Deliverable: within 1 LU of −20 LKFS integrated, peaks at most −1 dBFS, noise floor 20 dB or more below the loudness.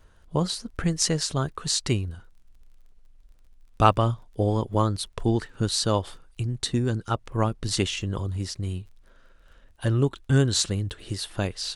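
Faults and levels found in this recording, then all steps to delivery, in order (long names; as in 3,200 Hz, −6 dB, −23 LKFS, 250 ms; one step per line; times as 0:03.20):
crackle rate 29 per second; integrated loudness −26.0 LKFS; sample peak −3.5 dBFS; target loudness −20.0 LKFS
→ click removal
level +6 dB
brickwall limiter −1 dBFS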